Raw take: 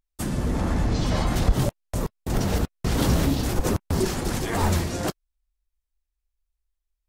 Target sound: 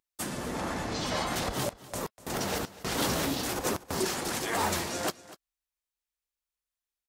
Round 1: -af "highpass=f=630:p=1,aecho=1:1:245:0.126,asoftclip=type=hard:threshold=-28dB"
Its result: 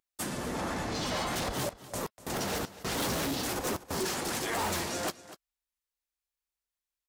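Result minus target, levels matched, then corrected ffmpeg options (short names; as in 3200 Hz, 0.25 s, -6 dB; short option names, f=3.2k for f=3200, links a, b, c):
hard clip: distortion +22 dB
-af "highpass=f=630:p=1,aecho=1:1:245:0.126,asoftclip=type=hard:threshold=-19.5dB"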